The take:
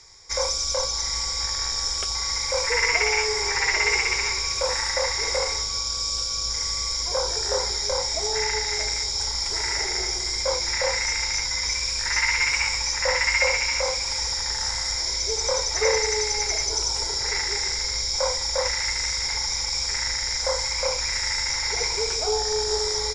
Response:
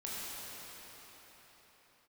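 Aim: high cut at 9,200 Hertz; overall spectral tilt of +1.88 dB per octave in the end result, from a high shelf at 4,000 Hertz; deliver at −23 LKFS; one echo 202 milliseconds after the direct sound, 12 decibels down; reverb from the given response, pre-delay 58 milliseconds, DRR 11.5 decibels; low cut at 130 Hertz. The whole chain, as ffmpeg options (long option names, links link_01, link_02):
-filter_complex "[0:a]highpass=130,lowpass=9200,highshelf=frequency=4000:gain=5.5,aecho=1:1:202:0.251,asplit=2[link_01][link_02];[1:a]atrim=start_sample=2205,adelay=58[link_03];[link_02][link_03]afir=irnorm=-1:irlink=0,volume=-14.5dB[link_04];[link_01][link_04]amix=inputs=2:normalize=0,volume=-3.5dB"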